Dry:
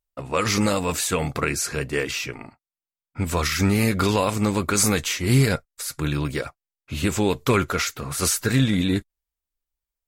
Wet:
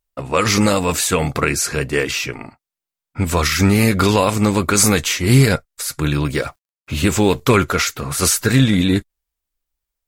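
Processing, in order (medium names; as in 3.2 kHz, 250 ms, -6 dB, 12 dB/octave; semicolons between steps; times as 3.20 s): 6.34–7.40 s: companding laws mixed up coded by mu; trim +6 dB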